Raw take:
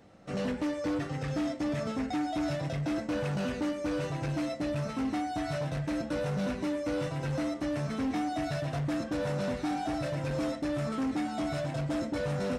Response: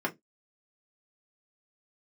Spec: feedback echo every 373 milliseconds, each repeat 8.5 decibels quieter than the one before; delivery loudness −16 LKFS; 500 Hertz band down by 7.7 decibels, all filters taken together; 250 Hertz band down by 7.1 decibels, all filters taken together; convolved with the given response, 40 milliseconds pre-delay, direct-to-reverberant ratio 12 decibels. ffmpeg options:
-filter_complex "[0:a]equalizer=frequency=250:width_type=o:gain=-6.5,equalizer=frequency=500:width_type=o:gain=-8.5,aecho=1:1:373|746|1119|1492:0.376|0.143|0.0543|0.0206,asplit=2[link_01][link_02];[1:a]atrim=start_sample=2205,adelay=40[link_03];[link_02][link_03]afir=irnorm=-1:irlink=0,volume=-20dB[link_04];[link_01][link_04]amix=inputs=2:normalize=0,volume=21dB"

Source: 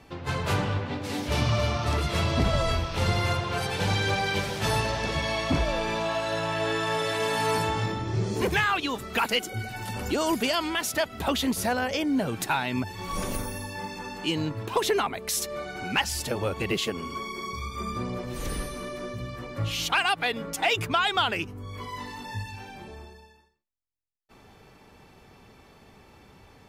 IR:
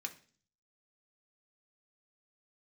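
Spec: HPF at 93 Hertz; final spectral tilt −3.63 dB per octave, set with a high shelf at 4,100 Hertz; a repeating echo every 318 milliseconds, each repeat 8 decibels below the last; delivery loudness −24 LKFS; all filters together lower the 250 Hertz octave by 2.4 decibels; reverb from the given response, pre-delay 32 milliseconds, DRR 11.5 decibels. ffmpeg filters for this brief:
-filter_complex "[0:a]highpass=93,equalizer=frequency=250:width_type=o:gain=-3,highshelf=frequency=4100:gain=7.5,aecho=1:1:318|636|954|1272|1590:0.398|0.159|0.0637|0.0255|0.0102,asplit=2[link_01][link_02];[1:a]atrim=start_sample=2205,adelay=32[link_03];[link_02][link_03]afir=irnorm=-1:irlink=0,volume=-10.5dB[link_04];[link_01][link_04]amix=inputs=2:normalize=0,volume=1.5dB"

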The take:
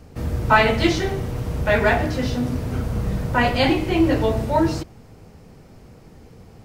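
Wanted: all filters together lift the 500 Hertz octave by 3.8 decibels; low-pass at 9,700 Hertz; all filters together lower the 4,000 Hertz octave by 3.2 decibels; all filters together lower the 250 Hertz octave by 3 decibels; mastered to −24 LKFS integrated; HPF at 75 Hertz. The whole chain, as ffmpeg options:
ffmpeg -i in.wav -af "highpass=75,lowpass=9700,equalizer=frequency=250:width_type=o:gain=-7.5,equalizer=frequency=500:width_type=o:gain=7,equalizer=frequency=4000:width_type=o:gain=-4.5,volume=-4dB" out.wav

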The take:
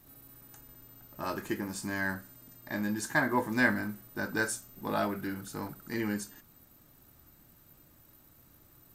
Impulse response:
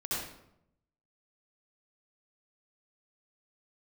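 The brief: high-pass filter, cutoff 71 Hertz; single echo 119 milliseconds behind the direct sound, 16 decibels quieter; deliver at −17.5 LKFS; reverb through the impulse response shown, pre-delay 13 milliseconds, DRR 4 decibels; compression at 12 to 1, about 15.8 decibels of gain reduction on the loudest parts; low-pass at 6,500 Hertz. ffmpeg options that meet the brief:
-filter_complex "[0:a]highpass=71,lowpass=6500,acompressor=threshold=-38dB:ratio=12,aecho=1:1:119:0.158,asplit=2[link_01][link_02];[1:a]atrim=start_sample=2205,adelay=13[link_03];[link_02][link_03]afir=irnorm=-1:irlink=0,volume=-9dB[link_04];[link_01][link_04]amix=inputs=2:normalize=0,volume=24.5dB"

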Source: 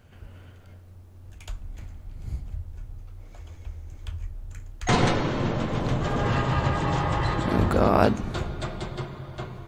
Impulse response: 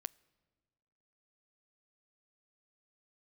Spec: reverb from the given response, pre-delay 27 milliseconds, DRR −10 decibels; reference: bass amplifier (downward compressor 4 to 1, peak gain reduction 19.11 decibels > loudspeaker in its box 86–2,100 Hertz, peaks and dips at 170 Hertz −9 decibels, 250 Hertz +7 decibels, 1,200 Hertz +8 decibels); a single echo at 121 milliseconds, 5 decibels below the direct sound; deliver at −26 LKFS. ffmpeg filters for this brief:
-filter_complex "[0:a]aecho=1:1:121:0.562,asplit=2[link_01][link_02];[1:a]atrim=start_sample=2205,adelay=27[link_03];[link_02][link_03]afir=irnorm=-1:irlink=0,volume=13.5dB[link_04];[link_01][link_04]amix=inputs=2:normalize=0,acompressor=threshold=-26dB:ratio=4,highpass=frequency=86:width=0.5412,highpass=frequency=86:width=1.3066,equalizer=frequency=170:width_type=q:width=4:gain=-9,equalizer=frequency=250:width_type=q:width=4:gain=7,equalizer=frequency=1200:width_type=q:width=4:gain=8,lowpass=frequency=2100:width=0.5412,lowpass=frequency=2100:width=1.3066,volume=2dB"

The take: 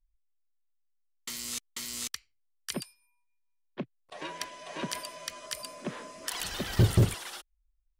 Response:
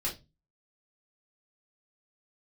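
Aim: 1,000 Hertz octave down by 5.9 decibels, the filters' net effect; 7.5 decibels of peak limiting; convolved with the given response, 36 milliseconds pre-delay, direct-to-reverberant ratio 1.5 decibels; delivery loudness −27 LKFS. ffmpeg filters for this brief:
-filter_complex "[0:a]equalizer=frequency=1000:width_type=o:gain=-7,alimiter=limit=-21dB:level=0:latency=1,asplit=2[link_01][link_02];[1:a]atrim=start_sample=2205,adelay=36[link_03];[link_02][link_03]afir=irnorm=-1:irlink=0,volume=-5.5dB[link_04];[link_01][link_04]amix=inputs=2:normalize=0,volume=7.5dB"

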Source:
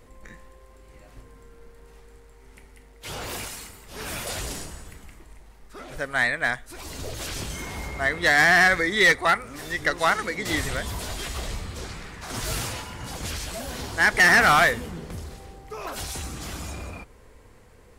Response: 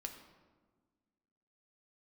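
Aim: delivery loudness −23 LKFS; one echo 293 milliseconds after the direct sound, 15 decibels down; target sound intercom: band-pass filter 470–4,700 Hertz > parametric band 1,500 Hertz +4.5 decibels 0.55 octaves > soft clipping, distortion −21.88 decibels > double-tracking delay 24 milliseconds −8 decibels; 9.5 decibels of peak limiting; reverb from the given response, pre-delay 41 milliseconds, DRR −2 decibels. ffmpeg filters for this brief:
-filter_complex "[0:a]alimiter=limit=-20.5dB:level=0:latency=1,aecho=1:1:293:0.178,asplit=2[link_01][link_02];[1:a]atrim=start_sample=2205,adelay=41[link_03];[link_02][link_03]afir=irnorm=-1:irlink=0,volume=5dB[link_04];[link_01][link_04]amix=inputs=2:normalize=0,highpass=470,lowpass=4700,equalizer=frequency=1500:width_type=o:width=0.55:gain=4.5,asoftclip=threshold=-11.5dB,asplit=2[link_05][link_06];[link_06]adelay=24,volume=-8dB[link_07];[link_05][link_07]amix=inputs=2:normalize=0,volume=2.5dB"

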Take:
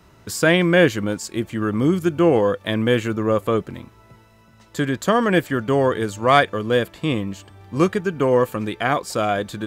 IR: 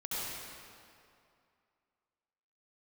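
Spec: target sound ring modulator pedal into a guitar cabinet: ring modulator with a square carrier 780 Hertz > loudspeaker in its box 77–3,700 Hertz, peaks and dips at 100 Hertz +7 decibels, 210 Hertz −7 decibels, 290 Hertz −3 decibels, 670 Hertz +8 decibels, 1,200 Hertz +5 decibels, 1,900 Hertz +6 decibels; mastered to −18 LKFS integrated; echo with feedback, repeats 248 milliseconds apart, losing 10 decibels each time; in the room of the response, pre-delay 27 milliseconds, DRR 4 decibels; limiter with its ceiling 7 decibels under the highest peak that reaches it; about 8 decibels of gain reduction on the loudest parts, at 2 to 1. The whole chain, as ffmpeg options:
-filter_complex "[0:a]acompressor=threshold=-25dB:ratio=2,alimiter=limit=-17dB:level=0:latency=1,aecho=1:1:248|496|744|992:0.316|0.101|0.0324|0.0104,asplit=2[link_01][link_02];[1:a]atrim=start_sample=2205,adelay=27[link_03];[link_02][link_03]afir=irnorm=-1:irlink=0,volume=-8.5dB[link_04];[link_01][link_04]amix=inputs=2:normalize=0,aeval=exprs='val(0)*sgn(sin(2*PI*780*n/s))':channel_layout=same,highpass=77,equalizer=frequency=100:width_type=q:width=4:gain=7,equalizer=frequency=210:width_type=q:width=4:gain=-7,equalizer=frequency=290:width_type=q:width=4:gain=-3,equalizer=frequency=670:width_type=q:width=4:gain=8,equalizer=frequency=1200:width_type=q:width=4:gain=5,equalizer=frequency=1900:width_type=q:width=4:gain=6,lowpass=frequency=3700:width=0.5412,lowpass=frequency=3700:width=1.3066,volume=4.5dB"

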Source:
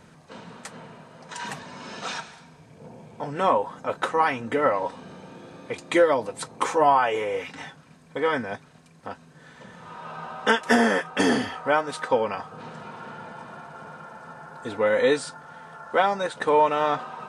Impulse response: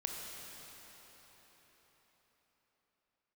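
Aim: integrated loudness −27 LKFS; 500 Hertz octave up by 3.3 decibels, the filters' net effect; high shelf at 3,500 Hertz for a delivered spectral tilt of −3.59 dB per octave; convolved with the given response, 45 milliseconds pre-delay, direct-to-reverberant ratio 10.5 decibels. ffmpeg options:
-filter_complex "[0:a]equalizer=frequency=500:width_type=o:gain=3.5,highshelf=frequency=3500:gain=6,asplit=2[link_01][link_02];[1:a]atrim=start_sample=2205,adelay=45[link_03];[link_02][link_03]afir=irnorm=-1:irlink=0,volume=-12dB[link_04];[link_01][link_04]amix=inputs=2:normalize=0,volume=-5.5dB"

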